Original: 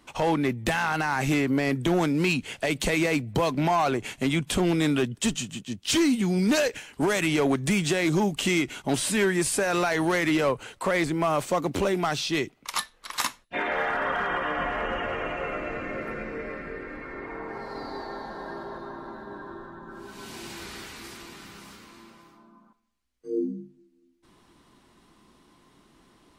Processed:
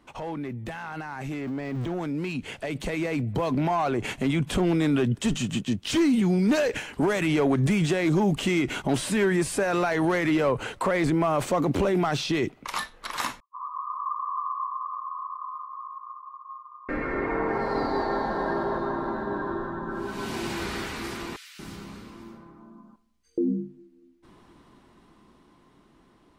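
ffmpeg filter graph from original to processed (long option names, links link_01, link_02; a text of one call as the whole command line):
ffmpeg -i in.wav -filter_complex "[0:a]asettb=1/sr,asplit=3[link_01][link_02][link_03];[link_01]atrim=end=1.414[link_04];[link_02]atrim=start=1.41:end=1.93,asetpts=PTS-STARTPTS,afade=type=in:duration=0.004:curve=qsin,afade=type=out:start_time=0.516:duration=0.004:curve=qsin,aeval=exprs='val(0)+0.5*0.0266*sgn(val(0))':channel_layout=same,equalizer=frequency=13000:width=1:gain=-12[link_05];[link_03]atrim=start=1.926[link_06];[link_04][link_05]acrossfade=duration=0.004:curve1=hsin:curve2=qsin[link_07];[link_07][link_06]acrossfade=duration=0.004:curve1=qsin:curve2=hsin,asettb=1/sr,asplit=3[link_08][link_09][link_10];[link_08]atrim=end=13.404[link_11];[link_09]atrim=start=13.4:end=16.89,asetpts=PTS-STARTPTS,afade=type=in:duration=0.004:curve=qsin,afade=type=out:start_time=3.486:duration=0.004:curve=qsin,asuperpass=centerf=1100:order=12:qfactor=4.9,acompressor=threshold=-42dB:ratio=1.5:attack=3.2:release=140:knee=1:detection=peak[link_12];[link_10]atrim=start=16.886[link_13];[link_11][link_12]acrossfade=duration=0.004:curve1=hsin:curve2=qsin[link_14];[link_14][link_13]acrossfade=duration=0.004:curve1=qsin:curve2=hsin,asettb=1/sr,asplit=3[link_15][link_16][link_17];[link_15]atrim=end=21.364[link_18];[link_16]atrim=start=21.36:end=23.38,asetpts=PTS-STARTPTS,afade=type=in:duration=0.004:curve=qsin,afade=type=out:start_time=2.016:duration=0.004:curve=qsin,equalizer=frequency=830:width_type=o:width=2.7:gain=-6.5,acrossover=split=1700[link_19][link_20];[link_19]adelay=230[link_21];[link_21][link_20]amix=inputs=2:normalize=0,atrim=end_sample=89082[link_22];[link_17]atrim=start=23.376[link_23];[link_18][link_22]acrossfade=duration=0.004:curve1=hsin:curve2=qsin[link_24];[link_24][link_23]acrossfade=duration=0.004:curve1=qsin:curve2=hsin,alimiter=level_in=2.5dB:limit=-24dB:level=0:latency=1:release=35,volume=-2.5dB,highshelf=frequency=2700:gain=-9.5,dynaudnorm=framelen=580:gausssize=11:maxgain=10.5dB" out.wav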